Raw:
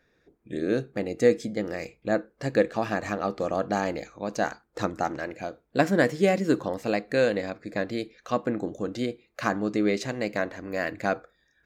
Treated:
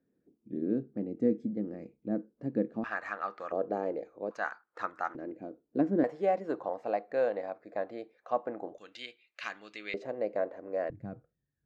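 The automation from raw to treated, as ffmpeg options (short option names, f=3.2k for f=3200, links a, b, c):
-af "asetnsamples=n=441:p=0,asendcmd='2.84 bandpass f 1400;3.52 bandpass f 450;4.31 bandpass f 1300;5.15 bandpass f 300;6.04 bandpass f 740;8.78 bandpass f 2800;9.94 bandpass f 550;10.9 bandpass f 120',bandpass=f=240:t=q:w=2.2:csg=0"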